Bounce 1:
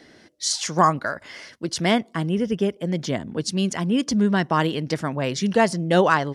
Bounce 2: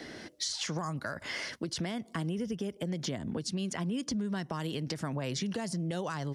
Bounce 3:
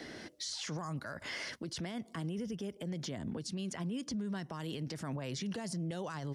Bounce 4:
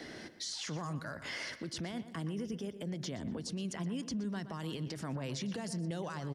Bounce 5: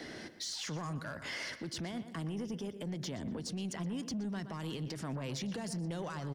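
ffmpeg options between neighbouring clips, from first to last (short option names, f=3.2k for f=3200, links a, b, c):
-filter_complex "[0:a]acrossover=split=200|5000[a][b][c];[a]acompressor=threshold=-34dB:ratio=4[d];[b]acompressor=threshold=-32dB:ratio=4[e];[c]acompressor=threshold=-41dB:ratio=4[f];[d][e][f]amix=inputs=3:normalize=0,alimiter=limit=-23.5dB:level=0:latency=1:release=126,acompressor=threshold=-40dB:ratio=2.5,volume=5.5dB"
-af "alimiter=level_in=5.5dB:limit=-24dB:level=0:latency=1:release=20,volume=-5.5dB,volume=-2dB"
-filter_complex "[0:a]asplit=2[a][b];[b]adelay=121,lowpass=f=3.4k:p=1,volume=-12dB,asplit=2[c][d];[d]adelay=121,lowpass=f=3.4k:p=1,volume=0.43,asplit=2[e][f];[f]adelay=121,lowpass=f=3.4k:p=1,volume=0.43,asplit=2[g][h];[h]adelay=121,lowpass=f=3.4k:p=1,volume=0.43[i];[a][c][e][g][i]amix=inputs=5:normalize=0"
-af "asoftclip=type=tanh:threshold=-33dB,volume=1.5dB"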